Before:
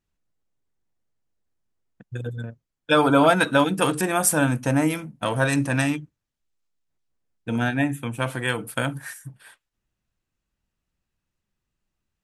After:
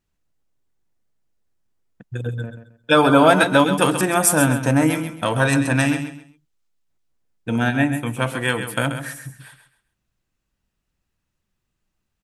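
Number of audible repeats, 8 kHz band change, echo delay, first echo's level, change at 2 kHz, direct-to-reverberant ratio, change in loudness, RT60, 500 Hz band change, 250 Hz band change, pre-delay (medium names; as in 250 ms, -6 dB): 3, +4.0 dB, 133 ms, -9.5 dB, +4.0 dB, no reverb, +4.0 dB, no reverb, +4.0 dB, +4.0 dB, no reverb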